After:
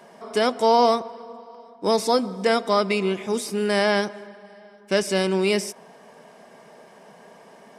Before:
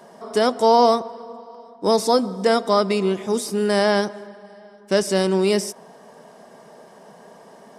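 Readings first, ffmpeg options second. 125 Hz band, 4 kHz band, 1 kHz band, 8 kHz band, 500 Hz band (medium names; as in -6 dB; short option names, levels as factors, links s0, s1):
no reading, -1.0 dB, -2.5 dB, -2.5 dB, -3.0 dB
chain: -af "equalizer=f=2300:w=1.7:g=8.5,bandreject=f=1900:w=24,volume=0.708"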